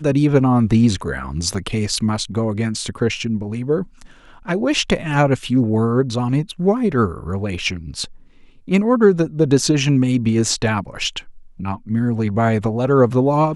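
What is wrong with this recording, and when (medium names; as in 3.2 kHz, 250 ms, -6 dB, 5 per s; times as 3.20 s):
1.54 s: dropout 2.2 ms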